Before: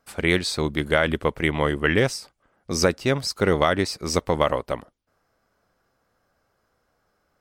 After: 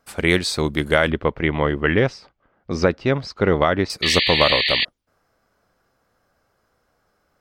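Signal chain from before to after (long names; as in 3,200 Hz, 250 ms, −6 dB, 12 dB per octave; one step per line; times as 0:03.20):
0:01.10–0:03.90: high-frequency loss of the air 220 metres
0:04.02–0:04.85: sound drawn into the spectrogram noise 1,700–4,700 Hz −23 dBFS
level +3 dB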